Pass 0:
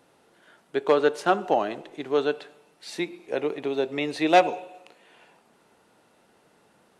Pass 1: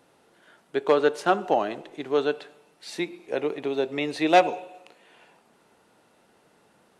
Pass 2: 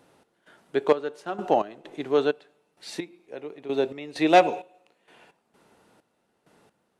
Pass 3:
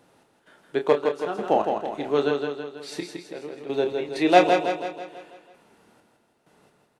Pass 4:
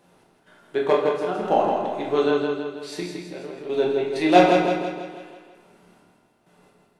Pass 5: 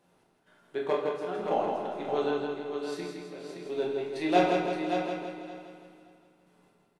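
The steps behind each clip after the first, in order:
no processing that can be heard
low-shelf EQ 390 Hz +3.5 dB; gate pattern "x.xx..x.xx..x..." 65 BPM −12 dB
double-tracking delay 28 ms −8 dB; on a send: repeating echo 163 ms, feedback 52%, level −5 dB
rectangular room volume 210 cubic metres, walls mixed, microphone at 1.1 metres; level −1.5 dB
repeating echo 569 ms, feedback 17%, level −7 dB; level −9 dB

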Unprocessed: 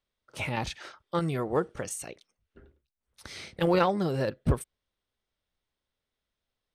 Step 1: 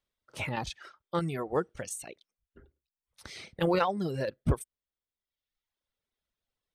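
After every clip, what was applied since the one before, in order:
reverb reduction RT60 1.1 s
level −1.5 dB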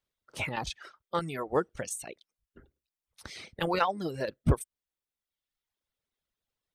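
harmonic and percussive parts rebalanced harmonic −8 dB
level +2.5 dB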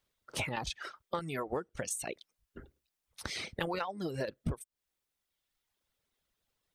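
downward compressor 16 to 1, threshold −38 dBFS, peak gain reduction 20 dB
level +6 dB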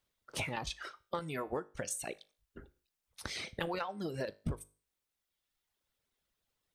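tuned comb filter 51 Hz, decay 0.38 s, harmonics all, mix 40%
level +1 dB

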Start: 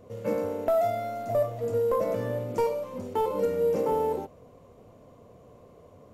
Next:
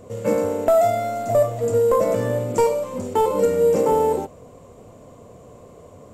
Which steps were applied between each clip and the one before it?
parametric band 7,700 Hz +14 dB 0.32 octaves
level +8 dB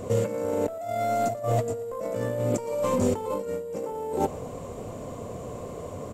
compressor whose output falls as the input rises −29 dBFS, ratio −1
repeating echo 114 ms, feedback 53%, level −21 dB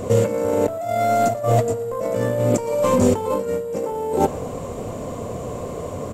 on a send at −18 dB: half-wave rectification + convolution reverb RT60 1.8 s, pre-delay 3 ms
on the sum: level +7.5 dB

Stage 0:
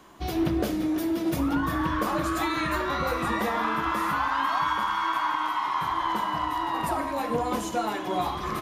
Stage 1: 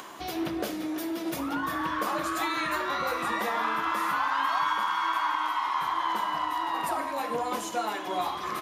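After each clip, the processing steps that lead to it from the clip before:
high-pass filter 550 Hz 6 dB per octave
upward compression, threshold −34 dBFS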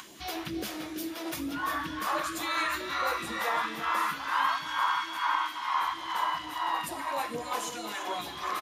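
all-pass phaser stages 2, 2.2 Hz, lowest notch 130–1,200 Hz
on a send: single-tap delay 335 ms −10.5 dB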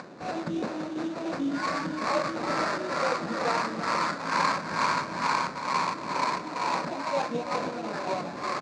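sample-rate reduction 3,300 Hz, jitter 20%
loudspeaker in its box 160–6,100 Hz, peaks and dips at 170 Hz +10 dB, 250 Hz +6 dB, 570 Hz +7 dB, 2,000 Hz −5 dB, 3,000 Hz −7 dB, 5,400 Hz −5 dB
level +2.5 dB

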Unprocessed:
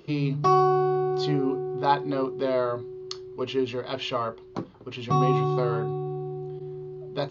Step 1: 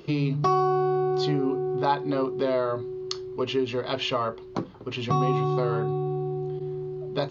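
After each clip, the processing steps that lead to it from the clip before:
downward compressor 2 to 1, threshold −29 dBFS, peak gain reduction 8 dB
level +4.5 dB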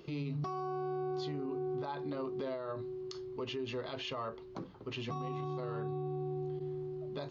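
brickwall limiter −23.5 dBFS, peak gain reduction 11.5 dB
level −7.5 dB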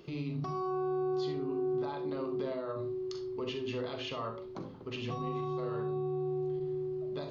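convolution reverb RT60 0.40 s, pre-delay 39 ms, DRR 6 dB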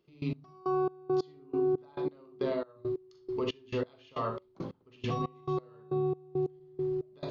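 gate pattern "..x...xx" 137 BPM −24 dB
level +5 dB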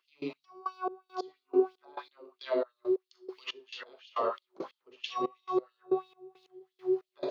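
auto-filter high-pass sine 3 Hz 370–3,900 Hz

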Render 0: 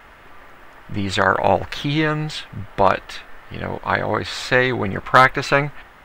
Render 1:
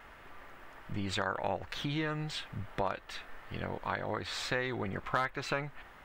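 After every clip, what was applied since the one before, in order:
downward compressor 2.5 to 1, threshold −26 dBFS, peak gain reduction 13 dB
level −8 dB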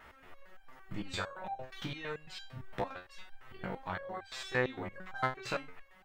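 step-sequenced resonator 8.8 Hz 63–790 Hz
level +6.5 dB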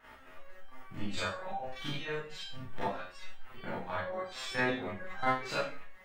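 four-comb reverb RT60 0.37 s, combs from 27 ms, DRR −9.5 dB
level −7 dB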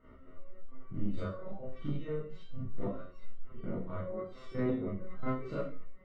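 moving average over 53 samples
in parallel at −5 dB: soft clipping −37 dBFS, distortion −10 dB
on the sum: level +3 dB

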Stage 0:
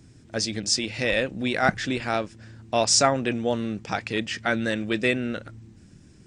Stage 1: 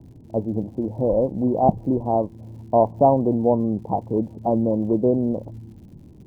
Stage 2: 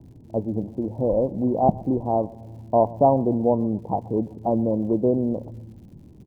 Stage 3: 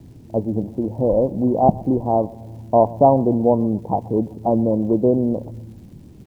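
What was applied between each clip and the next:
Butterworth low-pass 1,000 Hz 96 dB per octave; surface crackle 160 per second −55 dBFS; level +6.5 dB
repeating echo 125 ms, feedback 51%, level −22 dB; level −1.5 dB
bit reduction 11 bits; level +4 dB

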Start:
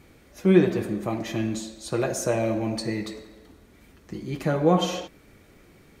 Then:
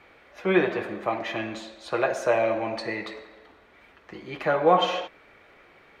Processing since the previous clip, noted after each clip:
three-way crossover with the lows and the highs turned down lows −19 dB, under 510 Hz, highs −23 dB, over 3,400 Hz
level +7 dB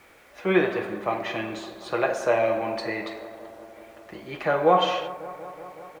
bit-depth reduction 10 bits, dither none
double-tracking delay 43 ms −12.5 dB
bucket-brigade delay 186 ms, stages 2,048, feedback 80%, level −17 dB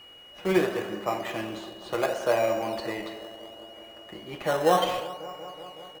in parallel at −5.5 dB: sample-and-hold swept by an LFO 13×, swing 100% 0.7 Hz
on the sum: steady tone 2,900 Hz −42 dBFS
level −5.5 dB

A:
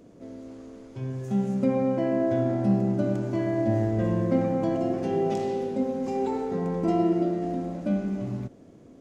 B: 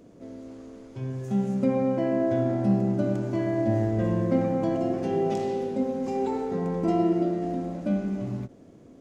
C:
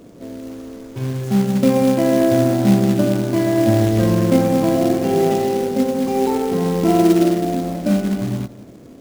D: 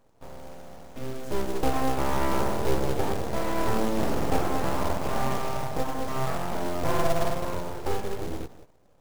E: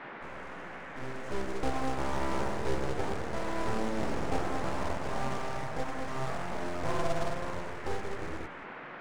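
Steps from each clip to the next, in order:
every ending faded ahead of time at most 430 dB per second
on a send at −16 dB: convolution reverb RT60 0.75 s, pre-delay 170 ms; on the sum: floating-point word with a short mantissa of 2 bits; level +9 dB
noise gate −37 dBFS, range −11 dB; full-wave rectification; level −7.5 dB
noise in a band 150–2,000 Hz −38 dBFS; Savitzky-Golay smoothing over 9 samples; level −6.5 dB

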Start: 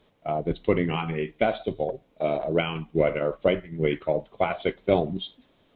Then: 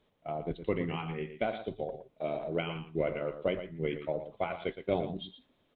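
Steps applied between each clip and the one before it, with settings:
single-tap delay 116 ms −10.5 dB
level −9 dB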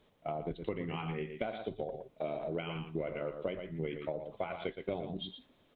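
downward compressor 5 to 1, threshold −38 dBFS, peak gain reduction 13 dB
level +4 dB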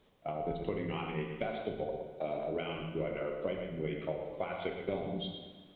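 dense smooth reverb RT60 1.5 s, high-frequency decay 0.9×, DRR 3.5 dB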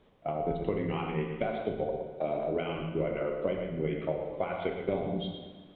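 low-pass filter 2,100 Hz 6 dB per octave
level +5 dB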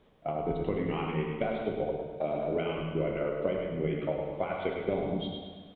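repeating echo 102 ms, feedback 55%, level −8 dB

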